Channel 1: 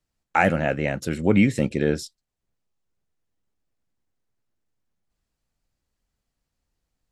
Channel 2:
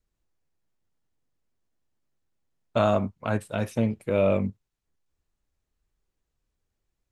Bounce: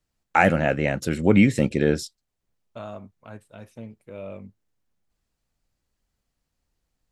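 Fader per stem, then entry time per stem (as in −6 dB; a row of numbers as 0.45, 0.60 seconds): +1.5, −15.0 decibels; 0.00, 0.00 seconds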